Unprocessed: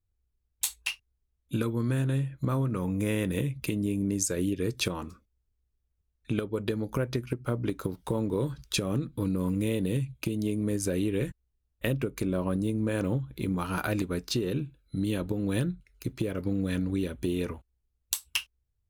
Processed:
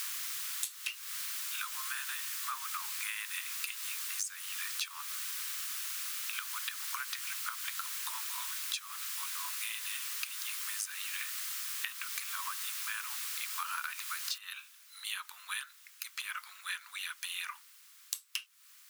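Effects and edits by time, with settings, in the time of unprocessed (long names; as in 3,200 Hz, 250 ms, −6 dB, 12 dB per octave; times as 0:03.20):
0:02.25–0:03.03: low-pass filter 7,200 Hz 24 dB per octave
0:14.38: noise floor change −45 dB −66 dB
whole clip: Butterworth high-pass 1,100 Hz 48 dB per octave; downward compressor 12 to 1, threshold −42 dBFS; level +8 dB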